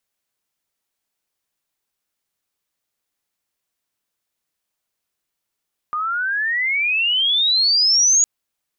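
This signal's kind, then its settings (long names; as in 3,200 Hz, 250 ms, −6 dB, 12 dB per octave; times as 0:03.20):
glide logarithmic 1,200 Hz → 6,800 Hz −20 dBFS → −11 dBFS 2.31 s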